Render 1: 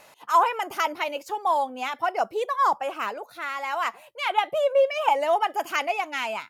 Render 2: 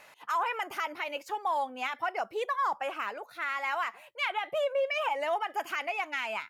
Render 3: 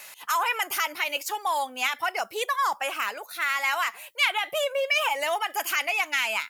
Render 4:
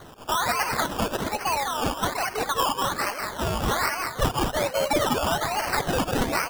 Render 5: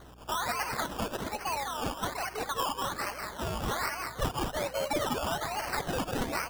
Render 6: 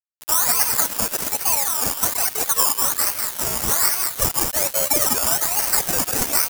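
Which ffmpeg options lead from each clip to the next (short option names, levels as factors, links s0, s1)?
-af "equalizer=f=1900:w=0.9:g=8,alimiter=limit=0.168:level=0:latency=1:release=110,volume=0.473"
-af "crystalizer=i=7.5:c=0"
-filter_complex "[0:a]asplit=6[s0][s1][s2][s3][s4][s5];[s1]adelay=199,afreqshift=36,volume=0.668[s6];[s2]adelay=398,afreqshift=72,volume=0.282[s7];[s3]adelay=597,afreqshift=108,volume=0.117[s8];[s4]adelay=796,afreqshift=144,volume=0.0495[s9];[s5]adelay=995,afreqshift=180,volume=0.0209[s10];[s0][s6][s7][s8][s9][s10]amix=inputs=6:normalize=0,acrusher=samples=17:mix=1:aa=0.000001:lfo=1:lforange=10.2:lforate=1.2"
-af "aeval=exprs='val(0)+0.00501*(sin(2*PI*60*n/s)+sin(2*PI*2*60*n/s)/2+sin(2*PI*3*60*n/s)/3+sin(2*PI*4*60*n/s)/4+sin(2*PI*5*60*n/s)/5)':c=same,volume=0.422"
-filter_complex "[0:a]acrossover=split=150[s0][s1];[s1]aexciter=amount=4.6:drive=8.6:freq=5100[s2];[s0][s2]amix=inputs=2:normalize=0,aeval=exprs='val(0)*gte(abs(val(0)),0.0299)':c=same,volume=1.88"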